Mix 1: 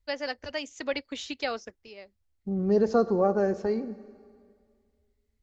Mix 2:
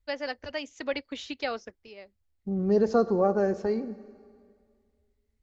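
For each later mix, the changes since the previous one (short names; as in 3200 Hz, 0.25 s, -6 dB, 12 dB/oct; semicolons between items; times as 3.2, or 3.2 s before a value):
first voice: add air absorption 76 m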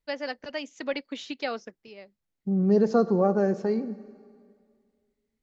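master: add resonant low shelf 110 Hz -10.5 dB, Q 3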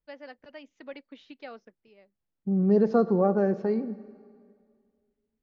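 first voice -10.5 dB; master: add air absorption 200 m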